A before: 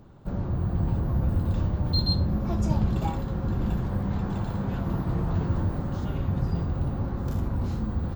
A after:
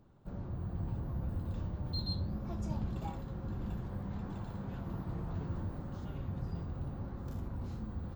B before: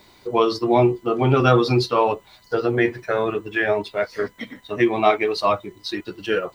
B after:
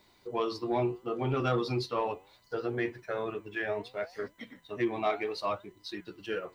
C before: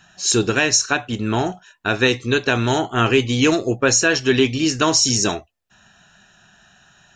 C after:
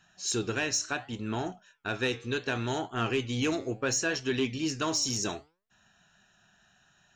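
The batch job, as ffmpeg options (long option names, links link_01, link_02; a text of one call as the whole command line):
ffmpeg -i in.wav -af "flanger=delay=2.9:depth=8.2:regen=90:speed=0.69:shape=triangular,asoftclip=type=tanh:threshold=-10.5dB,volume=-7.5dB" out.wav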